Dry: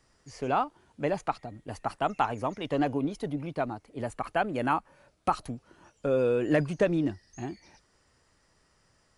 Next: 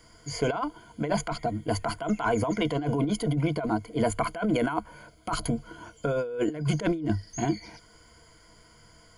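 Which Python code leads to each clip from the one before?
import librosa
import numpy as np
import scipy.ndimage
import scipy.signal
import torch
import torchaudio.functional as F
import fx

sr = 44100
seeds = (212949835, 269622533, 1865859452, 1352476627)

y = fx.ripple_eq(x, sr, per_octave=1.8, db=15)
y = fx.over_compress(y, sr, threshold_db=-31.0, ratio=-1.0)
y = y * 10.0 ** (4.0 / 20.0)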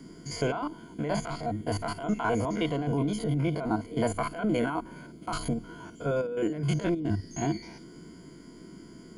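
y = fx.spec_steps(x, sr, hold_ms=50)
y = fx.dmg_noise_band(y, sr, seeds[0], low_hz=140.0, high_hz=370.0, level_db=-48.0)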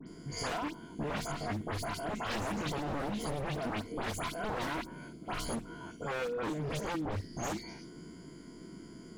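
y = 10.0 ** (-29.0 / 20.0) * (np.abs((x / 10.0 ** (-29.0 / 20.0) + 3.0) % 4.0 - 2.0) - 1.0)
y = fx.dispersion(y, sr, late='highs', ms=75.0, hz=2800.0)
y = y * 10.0 ** (-1.5 / 20.0)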